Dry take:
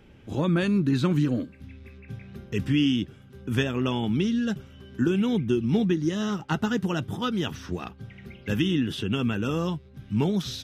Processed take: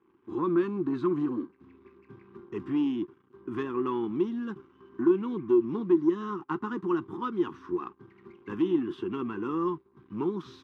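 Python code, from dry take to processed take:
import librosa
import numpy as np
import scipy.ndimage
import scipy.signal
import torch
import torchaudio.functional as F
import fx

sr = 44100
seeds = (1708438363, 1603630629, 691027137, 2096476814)

y = fx.leveller(x, sr, passes=2)
y = fx.double_bandpass(y, sr, hz=610.0, octaves=1.6)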